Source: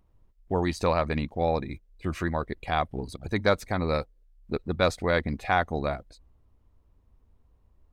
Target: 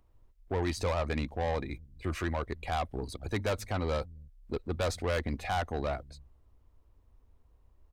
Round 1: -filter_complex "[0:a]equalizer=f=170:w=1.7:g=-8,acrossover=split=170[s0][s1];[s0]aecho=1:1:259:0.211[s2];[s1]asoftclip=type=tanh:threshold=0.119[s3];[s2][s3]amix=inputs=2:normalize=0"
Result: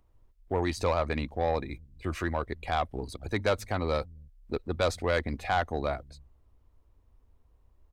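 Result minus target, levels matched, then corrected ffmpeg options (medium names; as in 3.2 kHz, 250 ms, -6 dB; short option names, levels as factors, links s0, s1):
saturation: distortion -6 dB
-filter_complex "[0:a]equalizer=f=170:w=1.7:g=-8,acrossover=split=170[s0][s1];[s0]aecho=1:1:259:0.211[s2];[s1]asoftclip=type=tanh:threshold=0.0447[s3];[s2][s3]amix=inputs=2:normalize=0"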